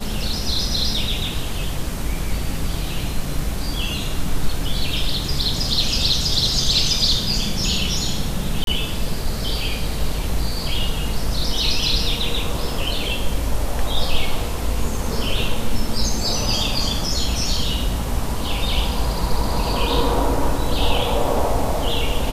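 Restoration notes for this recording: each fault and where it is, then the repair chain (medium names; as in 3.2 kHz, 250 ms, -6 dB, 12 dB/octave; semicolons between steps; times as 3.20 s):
8.64–8.67 s: dropout 32 ms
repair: interpolate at 8.64 s, 32 ms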